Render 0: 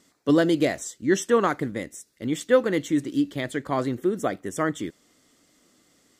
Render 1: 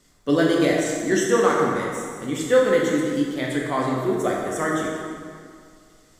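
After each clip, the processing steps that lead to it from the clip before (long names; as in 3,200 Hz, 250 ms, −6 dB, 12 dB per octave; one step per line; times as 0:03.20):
low-shelf EQ 370 Hz −4.5 dB
background noise brown −63 dBFS
dense smooth reverb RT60 2.1 s, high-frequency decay 0.7×, DRR −3 dB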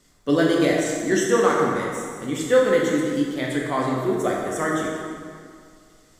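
no processing that can be heard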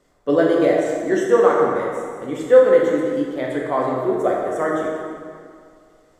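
drawn EQ curve 220 Hz 0 dB, 550 Hz +11 dB, 5,000 Hz −6 dB
level −4 dB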